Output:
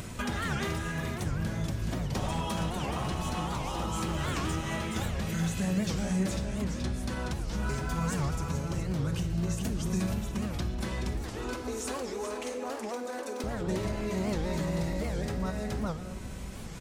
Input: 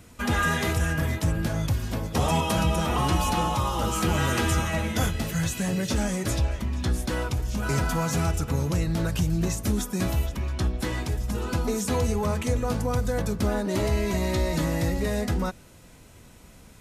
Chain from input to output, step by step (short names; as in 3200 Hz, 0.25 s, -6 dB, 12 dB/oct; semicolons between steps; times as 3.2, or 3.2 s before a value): one-sided fold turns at -18.5 dBFS; bell 12000 Hz -9.5 dB 0.25 oct; echo 0.425 s -6.5 dB; compressor 12:1, threshold -30 dBFS, peak gain reduction 12.5 dB; 11.23–13.44 brick-wall FIR high-pass 230 Hz; shoebox room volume 1800 m³, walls mixed, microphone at 1.1 m; vibrato 1.3 Hz 27 cents; upward compressor, threshold -32 dBFS; record warp 78 rpm, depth 250 cents